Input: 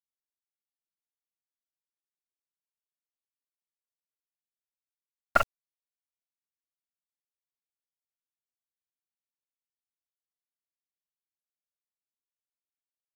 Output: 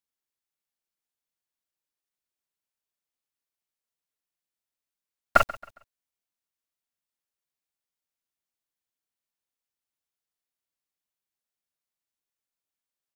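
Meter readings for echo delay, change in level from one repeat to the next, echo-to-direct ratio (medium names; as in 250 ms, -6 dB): 136 ms, -9.5 dB, -18.5 dB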